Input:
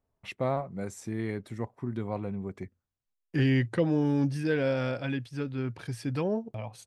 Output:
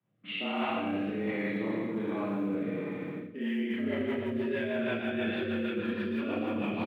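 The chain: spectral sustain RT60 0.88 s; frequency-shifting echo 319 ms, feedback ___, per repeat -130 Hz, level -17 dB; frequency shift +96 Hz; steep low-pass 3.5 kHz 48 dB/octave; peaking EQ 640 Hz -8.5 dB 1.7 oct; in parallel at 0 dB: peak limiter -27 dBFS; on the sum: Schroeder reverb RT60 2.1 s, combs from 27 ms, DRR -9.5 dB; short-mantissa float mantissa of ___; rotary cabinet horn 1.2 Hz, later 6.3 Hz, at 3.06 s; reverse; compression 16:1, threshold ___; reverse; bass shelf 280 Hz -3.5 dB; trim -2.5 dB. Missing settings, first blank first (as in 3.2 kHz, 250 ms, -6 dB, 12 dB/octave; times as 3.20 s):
45%, 6-bit, -24 dBFS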